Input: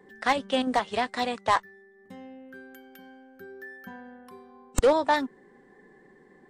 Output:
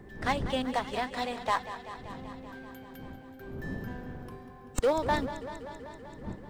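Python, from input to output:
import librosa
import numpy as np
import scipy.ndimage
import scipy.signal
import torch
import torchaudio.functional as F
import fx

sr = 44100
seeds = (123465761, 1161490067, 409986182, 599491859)

y = fx.law_mismatch(x, sr, coded='mu')
y = fx.dmg_wind(y, sr, seeds[0], corner_hz=230.0, level_db=-37.0)
y = fx.echo_warbled(y, sr, ms=193, feedback_pct=75, rate_hz=2.8, cents=52, wet_db=-13.0)
y = y * librosa.db_to_amplitude(-6.0)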